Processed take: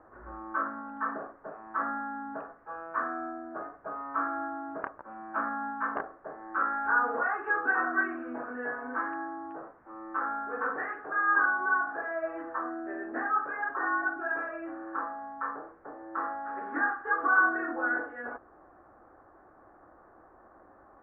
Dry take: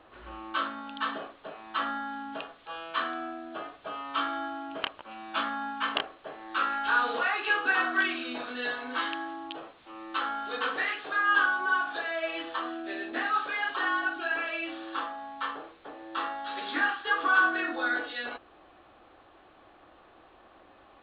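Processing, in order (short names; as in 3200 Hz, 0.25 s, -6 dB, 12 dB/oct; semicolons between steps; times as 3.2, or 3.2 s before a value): steep low-pass 1700 Hz 48 dB/oct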